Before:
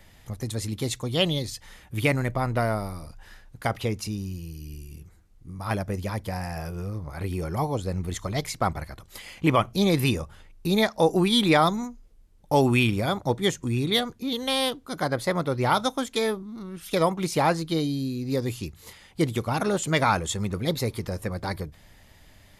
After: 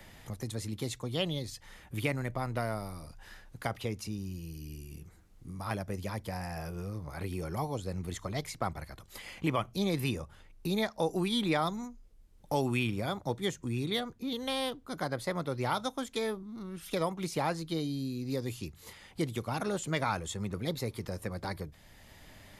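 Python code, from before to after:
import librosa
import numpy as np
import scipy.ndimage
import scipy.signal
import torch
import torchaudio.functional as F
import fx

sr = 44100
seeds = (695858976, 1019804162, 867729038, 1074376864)

y = fx.band_squash(x, sr, depth_pct=40)
y = y * 10.0 ** (-8.5 / 20.0)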